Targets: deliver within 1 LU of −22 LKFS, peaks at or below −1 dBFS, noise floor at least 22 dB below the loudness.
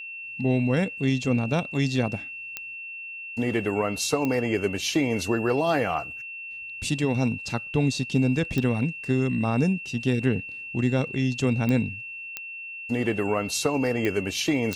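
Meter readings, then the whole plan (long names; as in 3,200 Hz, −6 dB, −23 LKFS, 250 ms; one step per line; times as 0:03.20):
number of clicks 7; interfering tone 2,700 Hz; level of the tone −35 dBFS; integrated loudness −26.0 LKFS; sample peak −9.5 dBFS; target loudness −22.0 LKFS
→ click removal
notch filter 2,700 Hz, Q 30
level +4 dB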